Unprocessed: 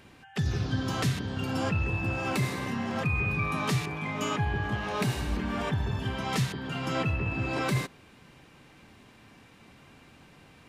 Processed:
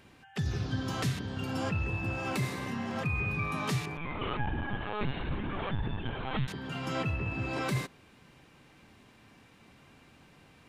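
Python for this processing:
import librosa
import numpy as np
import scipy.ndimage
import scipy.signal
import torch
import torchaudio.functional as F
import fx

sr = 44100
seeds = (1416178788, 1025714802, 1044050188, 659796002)

y = fx.lpc_vocoder(x, sr, seeds[0], excitation='pitch_kept', order=16, at=(3.97, 6.48))
y = y * 10.0 ** (-3.5 / 20.0)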